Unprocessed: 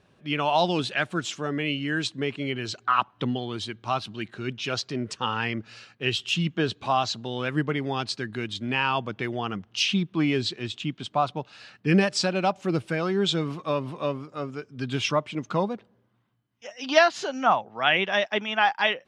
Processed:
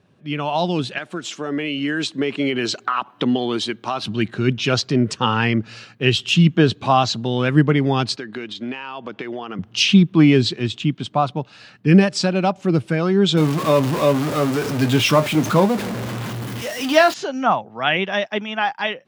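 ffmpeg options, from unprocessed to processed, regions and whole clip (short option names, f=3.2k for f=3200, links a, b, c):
-filter_complex "[0:a]asettb=1/sr,asplit=3[a][b][c];[a]atrim=end=0.984[d];[b]atrim=start=0.98:end=4.03,asetpts=PTS-STARTPTS,afade=t=in:d=0.004:c=qsin,afade=t=out:st=3.046:d=0.004:c=qsin,highpass=270,acompressor=threshold=-28dB:ratio=5:attack=3.2:release=140:knee=1:detection=peak[e];[c]atrim=start=4.026[f];[d][e]acrossfade=d=0.004:c1=hsin:c2=qsin[g];[g][f]acrossfade=d=0.004:c1=qsin:c2=hsin,asettb=1/sr,asplit=3[h][i][j];[h]atrim=end=8.164[k];[i]atrim=start=8.16:end=9.59,asetpts=PTS-STARTPTS,afade=t=in:d=0.004:c=qsin,afade=t=out:st=1.426:d=0.004:c=qsin,highpass=320,lowpass=5.7k,acompressor=threshold=-34dB:ratio=10:attack=3.2:release=140:knee=1:detection=peak[l];[j]atrim=start=9.586[m];[k][l]acrossfade=d=0.004:c1=hsin:c2=qsin[n];[n][m]acrossfade=d=0.004:c1=qsin:c2=hsin,asettb=1/sr,asplit=3[o][p][q];[o]atrim=end=13.374[r];[p]atrim=start=13.37:end=17.14,asetpts=PTS-STARTPTS,afade=t=in:d=0.004:c=qsin,afade=t=out:st=3.766:d=0.004:c=qsin,aeval=exprs='val(0)+0.5*0.0447*sgn(val(0))':c=same,bass=f=250:g=-4,treble=f=4k:g=-1,asplit=2[s][t];[t]adelay=26,volume=-12dB[u];[s][u]amix=inputs=2:normalize=0,atrim=end_sample=166257[v];[q]atrim=start=17.136[w];[r][v]acrossfade=d=0.004:c1=hsin:c2=qsin[x];[x][w]acrossfade=d=0.004:c1=qsin:c2=hsin,highpass=110,lowshelf=f=280:g=10,dynaudnorm=f=260:g=9:m=11.5dB,volume=-1dB"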